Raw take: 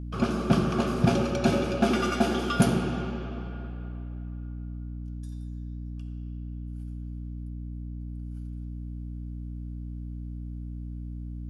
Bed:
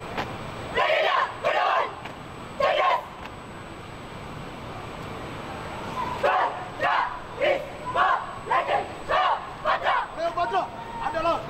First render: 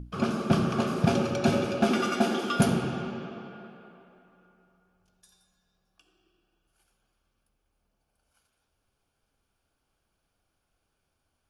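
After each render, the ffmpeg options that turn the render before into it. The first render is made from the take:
-af "bandreject=f=60:t=h:w=6,bandreject=f=120:t=h:w=6,bandreject=f=180:t=h:w=6,bandreject=f=240:t=h:w=6,bandreject=f=300:t=h:w=6,bandreject=f=360:t=h:w=6"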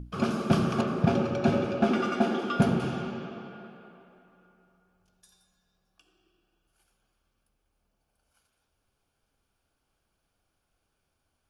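-filter_complex "[0:a]asettb=1/sr,asplit=3[a][b][c];[a]atrim=end=0.814[d];[b]atrim=start=0.81:end=2.8,asetpts=PTS-STARTPTS,afade=t=in:d=0.004:c=qsin,afade=t=out:st=1.986:d=0.004:c=qsin,aemphasis=mode=reproduction:type=75kf[e];[c]atrim=start=2.796[f];[d][e]acrossfade=d=0.004:c1=hsin:c2=qsin[g];[g][f]acrossfade=d=0.004:c1=qsin:c2=hsin"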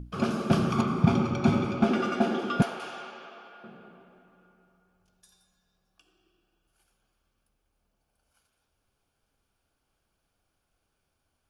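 -filter_complex "[0:a]asettb=1/sr,asplit=3[a][b][c];[a]atrim=end=0.704[d];[b]atrim=start=0.7:end=1.85,asetpts=PTS-STARTPTS,afade=t=in:d=0.004:c=qsin,afade=t=out:st=1.146:d=0.004:c=qsin,aecho=1:1:0.9:0.58,atrim=end_sample=50715[e];[c]atrim=start=1.846[f];[d][e]acrossfade=d=0.004:c1=hsin:c2=qsin[g];[g][f]acrossfade=d=0.004:c1=qsin:c2=hsin,asettb=1/sr,asplit=3[h][i][j];[h]atrim=end=2.624[k];[i]atrim=start=2.62:end=3.64,asetpts=PTS-STARTPTS,afade=t=in:d=0.004:c=qsin,afade=t=out:st=1.016:d=0.004:c=qsin,highpass=710[l];[j]atrim=start=3.636[m];[k][l]acrossfade=d=0.004:c1=hsin:c2=qsin[n];[n][m]acrossfade=d=0.004:c1=qsin:c2=hsin"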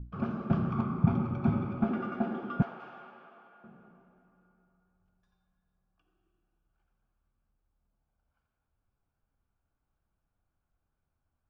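-af "lowpass=1.1k,equalizer=f=460:w=0.66:g=-10"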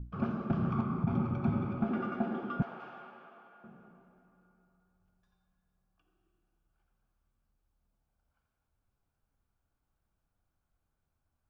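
-af "alimiter=limit=-20dB:level=0:latency=1:release=132"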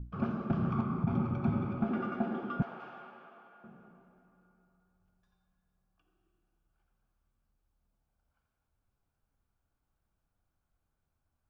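-af anull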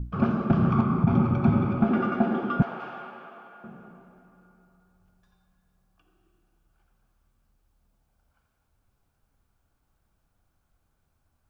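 -af "volume=9.5dB"

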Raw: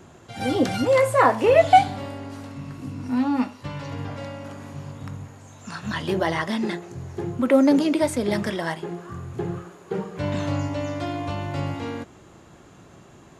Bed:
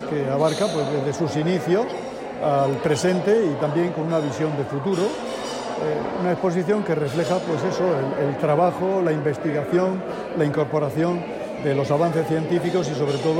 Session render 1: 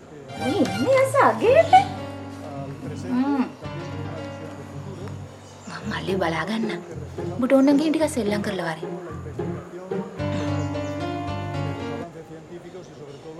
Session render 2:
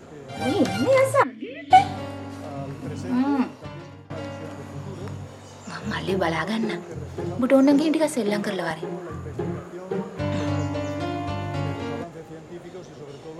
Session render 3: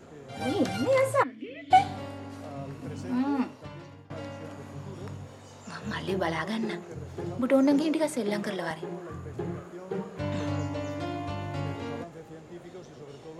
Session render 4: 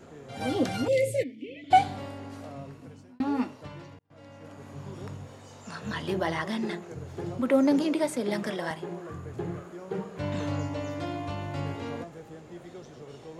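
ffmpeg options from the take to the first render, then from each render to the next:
-filter_complex "[1:a]volume=-18dB[a];[0:a][a]amix=inputs=2:normalize=0"
-filter_complex "[0:a]asplit=3[a][b][c];[a]afade=t=out:st=1.22:d=0.02[d];[b]asplit=3[e][f][g];[e]bandpass=f=270:t=q:w=8,volume=0dB[h];[f]bandpass=f=2.29k:t=q:w=8,volume=-6dB[i];[g]bandpass=f=3.01k:t=q:w=8,volume=-9dB[j];[h][i][j]amix=inputs=3:normalize=0,afade=t=in:st=1.22:d=0.02,afade=t=out:st=1.7:d=0.02[k];[c]afade=t=in:st=1.7:d=0.02[l];[d][k][l]amix=inputs=3:normalize=0,asettb=1/sr,asplit=3[m][n][o];[m]atrim=end=7.844[p];[n]atrim=start=7.84:end=8.71,asetpts=PTS-STARTPTS,afade=t=in:d=0.004:c=qsin,afade=t=out:st=0.866:d=0.004:c=qsin,highpass=f=160:w=0.5412,highpass=f=160:w=1.3066[q];[o]atrim=start=8.706[r];[p][q]acrossfade=d=0.004:c1=hsin:c2=qsin[s];[s][r]acrossfade=d=0.004:c1=qsin:c2=hsin,asplit=2[t][u];[t]atrim=end=4.1,asetpts=PTS-STARTPTS,afade=t=out:st=3.42:d=0.68:silence=0.0841395[v];[u]atrim=start=4.1,asetpts=PTS-STARTPTS,afade=t=in:d=0.004:c=hsin:silence=0.0841395[w];[v][w]concat=n=2:v=0:a=1"
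-af "volume=-5.5dB"
-filter_complex "[0:a]asettb=1/sr,asplit=3[a][b][c];[a]atrim=end=0.884[d];[b]atrim=start=0.88:end=1.64,asetpts=PTS-STARTPTS,afade=t=in:d=0.004:c=qsin,afade=t=out:st=0.756:d=0.004:c=qsin,asuperstop=centerf=1100:order=12:qfactor=0.75[e];[c]atrim=start=1.636[f];[d][e]acrossfade=d=0.004:c1=hsin:c2=qsin[g];[g][f]acrossfade=d=0.004:c1=qsin:c2=hsin,asplit=3[h][i][j];[h]atrim=end=3.2,asetpts=PTS-STARTPTS,afade=t=out:st=2.37:d=0.83[k];[i]atrim=start=3.2:end=3.99,asetpts=PTS-STARTPTS,afade=t=in:d=0.004:c=hsin,afade=t=out:st=0.786:d=0.004:c=hsin[l];[j]atrim=start=3.99,asetpts=PTS-STARTPTS,afade=t=in:d=0.88[m];[k][l][m]concat=n=3:v=0:a=1"

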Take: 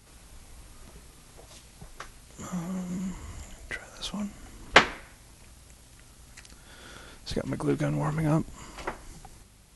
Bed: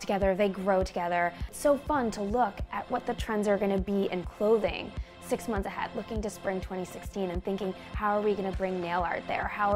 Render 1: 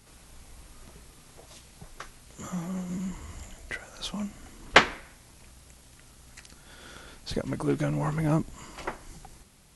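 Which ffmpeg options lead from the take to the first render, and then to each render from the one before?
-af "bandreject=f=50:t=h:w=4,bandreject=f=100:t=h:w=4"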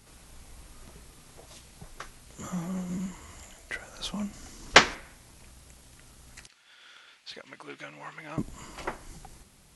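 -filter_complex "[0:a]asettb=1/sr,asplit=3[a][b][c];[a]atrim=end=3.064[d];[b]atrim=start=3.06:end=3.74,asetpts=PTS-STARTPTS,afade=t=in:d=0.004:c=qsin,afade=t=out:st=0.676:d=0.004:c=qsin,lowshelf=f=290:g=-8.5[e];[c]atrim=start=3.736[f];[d][e]acrossfade=d=0.004:c1=hsin:c2=qsin[g];[g][f]acrossfade=d=0.004:c1=qsin:c2=hsin,asettb=1/sr,asplit=3[h][i][j];[h]atrim=end=4.334[k];[i]atrim=start=4.33:end=4.95,asetpts=PTS-STARTPTS,afade=t=in:d=0.004:c=qsin,afade=t=out:st=0.616:d=0.004:c=qsin,equalizer=f=5.7k:t=o:w=0.93:g=9[l];[j]atrim=start=4.946[m];[k][l]acrossfade=d=0.004:c1=hsin:c2=qsin[n];[n][m]acrossfade=d=0.004:c1=qsin:c2=hsin,asettb=1/sr,asplit=3[o][p][q];[o]atrim=end=6.474[r];[p]atrim=start=6.47:end=8.38,asetpts=PTS-STARTPTS,afade=t=in:d=0.004:c=qsin,afade=t=out:st=1.906:d=0.004:c=qsin,bandpass=f=2.6k:t=q:w=1.2[s];[q]atrim=start=8.376[t];[r][s]acrossfade=d=0.004:c1=hsin:c2=qsin[u];[u][t]acrossfade=d=0.004:c1=qsin:c2=hsin"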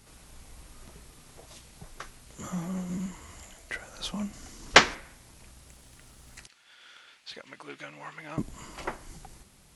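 -filter_complex "[0:a]asettb=1/sr,asplit=3[a][b][c];[a]atrim=end=5.684[d];[b]atrim=start=5.68:end=6.38,asetpts=PTS-STARTPTS,afade=t=in:d=0.004:c=qsin,afade=t=out:st=0.696:d=0.004:c=qsin,acrusher=bits=5:mode=log:mix=0:aa=0.000001[e];[c]atrim=start=6.376[f];[d][e]acrossfade=d=0.004:c1=hsin:c2=qsin[g];[g][f]acrossfade=d=0.004:c1=qsin:c2=hsin"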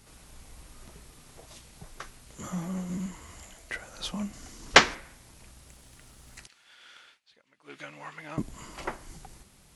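-filter_complex "[0:a]asplit=3[a][b][c];[a]atrim=end=7.2,asetpts=PTS-STARTPTS,afade=t=out:st=7:d=0.2:c=qsin:silence=0.112202[d];[b]atrim=start=7.2:end=7.62,asetpts=PTS-STARTPTS,volume=-19dB[e];[c]atrim=start=7.62,asetpts=PTS-STARTPTS,afade=t=in:d=0.2:c=qsin:silence=0.112202[f];[d][e][f]concat=n=3:v=0:a=1"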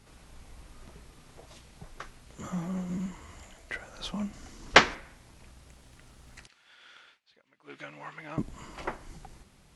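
-af "lowpass=f=3.8k:p=1"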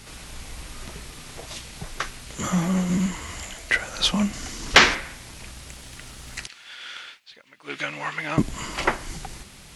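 -filter_complex "[0:a]acrossover=split=1700[a][b];[b]acontrast=87[c];[a][c]amix=inputs=2:normalize=0,alimiter=level_in=11dB:limit=-1dB:release=50:level=0:latency=1"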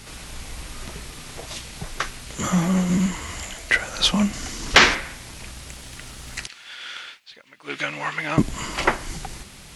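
-af "volume=2.5dB,alimiter=limit=-1dB:level=0:latency=1"

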